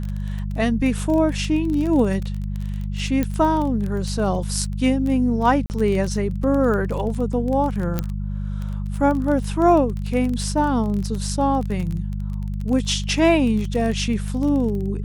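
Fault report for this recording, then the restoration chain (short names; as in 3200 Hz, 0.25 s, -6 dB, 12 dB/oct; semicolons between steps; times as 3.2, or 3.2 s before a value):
crackle 21/s -25 dBFS
hum 50 Hz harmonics 4 -26 dBFS
3.23 pop -10 dBFS
5.66–5.7 gap 39 ms
7.99 pop -9 dBFS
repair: de-click; de-hum 50 Hz, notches 4; interpolate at 5.66, 39 ms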